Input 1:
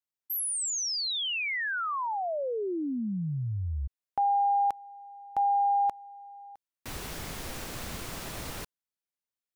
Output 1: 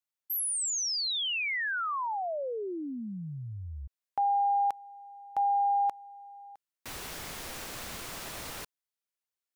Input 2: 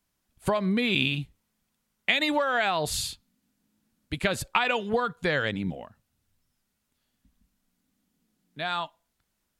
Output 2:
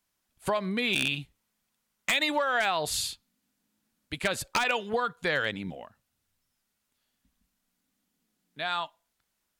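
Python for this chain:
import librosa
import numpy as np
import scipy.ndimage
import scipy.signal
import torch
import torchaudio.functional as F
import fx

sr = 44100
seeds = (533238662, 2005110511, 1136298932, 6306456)

y = fx.low_shelf(x, sr, hz=350.0, db=-8.5)
y = 10.0 ** (-16.5 / 20.0) * (np.abs((y / 10.0 ** (-16.5 / 20.0) + 3.0) % 4.0 - 2.0) - 1.0)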